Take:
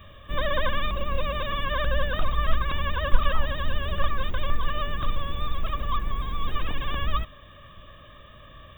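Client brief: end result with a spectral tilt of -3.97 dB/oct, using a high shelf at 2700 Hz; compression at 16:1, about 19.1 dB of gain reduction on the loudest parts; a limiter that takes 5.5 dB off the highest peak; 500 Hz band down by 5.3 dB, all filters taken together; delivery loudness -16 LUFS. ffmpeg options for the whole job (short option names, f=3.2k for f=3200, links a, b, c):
-af "equalizer=f=500:t=o:g=-6.5,highshelf=f=2.7k:g=4,acompressor=threshold=-27dB:ratio=16,volume=22.5dB,alimiter=limit=-2.5dB:level=0:latency=1"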